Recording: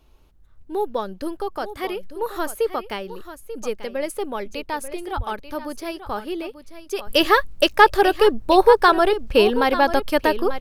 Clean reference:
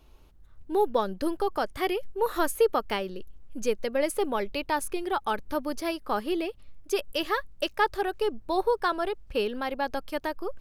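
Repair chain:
high-pass at the plosives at 0:05.16
echo removal 889 ms −12.5 dB
level correction −12 dB, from 0:07.07

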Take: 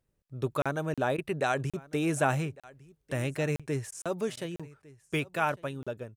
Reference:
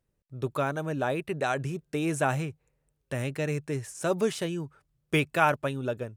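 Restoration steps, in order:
repair the gap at 0:00.62/0:00.94/0:01.70/0:02.60/0:03.56/0:04.02/0:04.56/0:05.83, 36 ms
repair the gap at 0:01.17/0:03.91/0:04.36, 11 ms
echo removal 1,154 ms −22 dB
level 0 dB, from 0:04.01 +5.5 dB

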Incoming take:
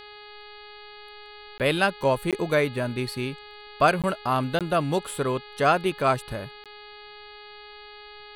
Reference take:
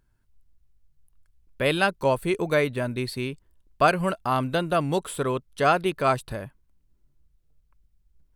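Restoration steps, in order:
hum removal 417 Hz, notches 11
repair the gap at 0:01.58/0:02.31/0:04.02/0:04.59/0:06.64, 17 ms

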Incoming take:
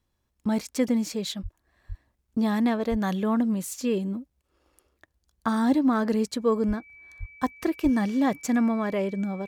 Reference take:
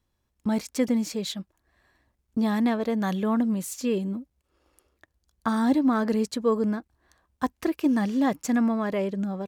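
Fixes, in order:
notch filter 2,300 Hz, Q 30
high-pass at the plosives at 0:01.42/0:01.88/0:02.90/0:06.67/0:07.19/0:07.83

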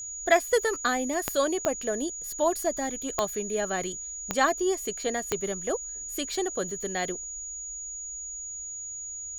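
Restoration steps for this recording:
click removal
notch filter 6,800 Hz, Q 30

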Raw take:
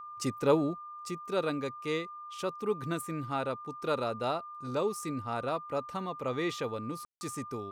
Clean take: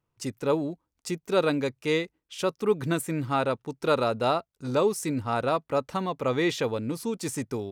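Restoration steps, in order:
notch filter 1,200 Hz, Q 30
ambience match 0:07.05–0:07.21
level correction +7.5 dB, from 0:00.79

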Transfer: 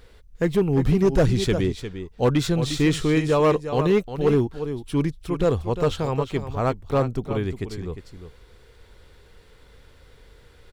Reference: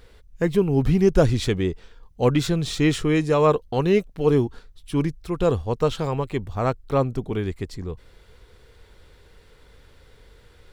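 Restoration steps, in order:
clipped peaks rebuilt −12.5 dBFS
echo removal 353 ms −10.5 dB

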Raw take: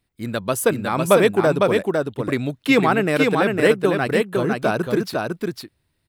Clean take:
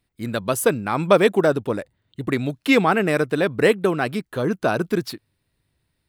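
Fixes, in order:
echo removal 504 ms −3.5 dB

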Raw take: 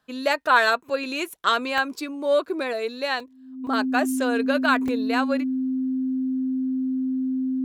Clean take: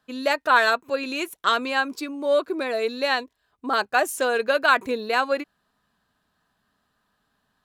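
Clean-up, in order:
notch filter 260 Hz, Q 30
repair the gap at 0:01.78/0:03.20/0:03.67/0:04.88, 3.1 ms
level 0 dB, from 0:02.73 +3 dB

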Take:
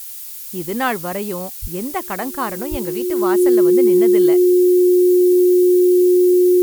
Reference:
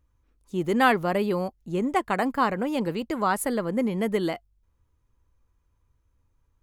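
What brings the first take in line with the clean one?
notch filter 360 Hz, Q 30
0:01.61–0:01.73: high-pass filter 140 Hz 24 dB per octave
0:02.70–0:02.82: high-pass filter 140 Hz 24 dB per octave
noise reduction from a noise print 30 dB

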